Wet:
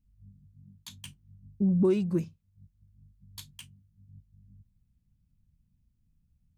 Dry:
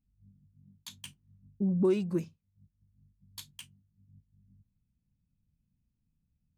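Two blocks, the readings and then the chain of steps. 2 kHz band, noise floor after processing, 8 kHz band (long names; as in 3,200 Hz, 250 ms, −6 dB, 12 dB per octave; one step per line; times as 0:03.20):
0.0 dB, −72 dBFS, 0.0 dB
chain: low-shelf EQ 140 Hz +11 dB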